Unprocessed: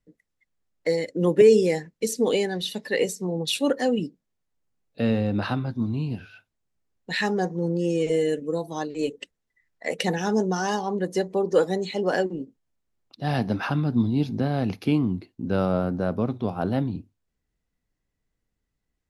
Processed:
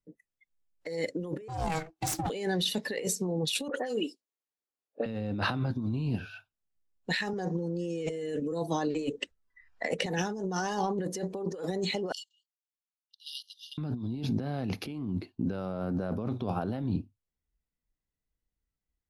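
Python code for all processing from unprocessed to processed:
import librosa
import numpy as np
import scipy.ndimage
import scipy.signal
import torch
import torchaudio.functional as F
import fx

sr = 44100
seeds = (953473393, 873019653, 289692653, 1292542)

y = fx.chain(x, sr, fx.lower_of_two(delay_ms=2.1),
    fx.ring_mod(carrier_hz=320.0),
    fx.transformer_sat(knee_hz=390.0), at=(1.48, 2.3))
y = fx.chain(y, sr, fx.highpass(hz=310.0, slope=24),
    fx.dispersion(late='highs', ms=73.0, hz=2300.0), at=(3.68, 5.06))
y = fx.chain(y, sr, fx.lowpass(hz=9300.0, slope=12),
    fx.band_squash(depth_pct=40), at=(7.33, 10.06))
y = fx.chain(y, sr, fx.level_steps(step_db=12),
    fx.brickwall_highpass(low_hz=2800.0), at=(12.12, 13.78))
y = fx.noise_reduce_blind(y, sr, reduce_db=14)
y = fx.over_compress(y, sr, threshold_db=-30.0, ratio=-1.0)
y = y * 10.0 ** (-2.5 / 20.0)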